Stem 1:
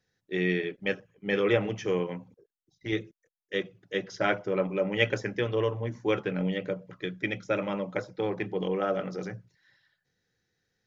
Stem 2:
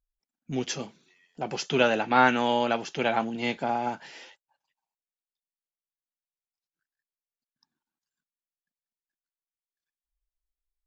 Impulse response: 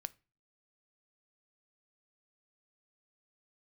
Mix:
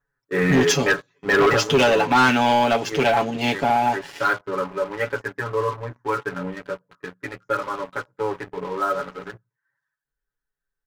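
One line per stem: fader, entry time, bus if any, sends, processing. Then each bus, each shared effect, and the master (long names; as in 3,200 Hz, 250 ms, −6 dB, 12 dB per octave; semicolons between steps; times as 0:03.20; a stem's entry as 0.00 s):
0:01.44 −8 dB → 0:01.66 −20 dB, 0.00 s, no send, octave-band graphic EQ 125/250/500/1,000/2,000/4,000 Hz +7/+5/+8/+5/+7/−11 dB; flanger 0.51 Hz, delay 6.9 ms, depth 6.2 ms, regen −31%; flat-topped bell 1,200 Hz +15 dB 1.1 octaves
+2.0 dB, 0.00 s, no send, automatic ducking −7 dB, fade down 1.90 s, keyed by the first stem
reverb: not used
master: parametric band 390 Hz +3 dB 0.41 octaves; comb filter 7.1 ms, depth 99%; leveller curve on the samples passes 3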